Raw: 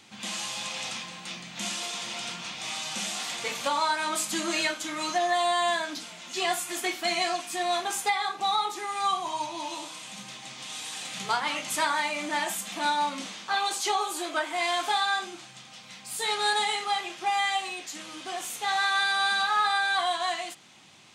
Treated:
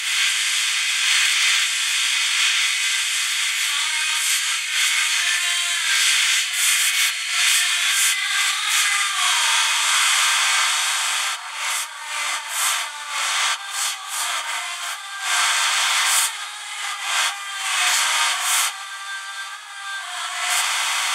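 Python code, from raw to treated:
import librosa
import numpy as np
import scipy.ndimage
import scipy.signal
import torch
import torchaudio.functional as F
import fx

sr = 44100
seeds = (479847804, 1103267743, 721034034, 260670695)

y = fx.bin_compress(x, sr, power=0.4)
y = fx.filter_sweep_highpass(y, sr, from_hz=2000.0, to_hz=930.0, start_s=8.12, end_s=11.05, q=1.4)
y = fx.over_compress(y, sr, threshold_db=-25.0, ratio=-0.5)
y = fx.tone_stack(y, sr, knobs='5-5-5')
y = fx.notch(y, sr, hz=4000.0, q=5.6)
y = fx.rev_gated(y, sr, seeds[0], gate_ms=90, shape='rising', drr_db=-4.0)
y = y * 10.0 ** (8.5 / 20.0)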